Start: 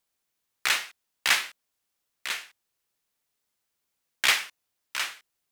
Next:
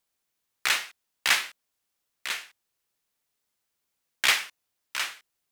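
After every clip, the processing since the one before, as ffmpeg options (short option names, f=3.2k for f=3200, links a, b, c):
-af anull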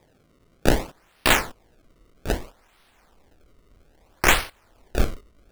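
-af "aexciter=amount=7.8:drive=7.9:freq=11k,acrusher=samples=30:mix=1:aa=0.000001:lfo=1:lforange=48:lforate=0.62,asubboost=boost=6.5:cutoff=57"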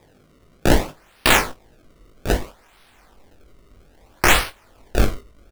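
-filter_complex "[0:a]alimiter=limit=-9.5dB:level=0:latency=1:release=20,asplit=2[a][b];[b]aecho=0:1:20|48:0.447|0.15[c];[a][c]amix=inputs=2:normalize=0,volume=5dB"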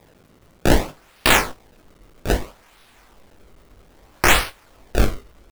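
-af "acrusher=bits=8:mix=0:aa=0.000001"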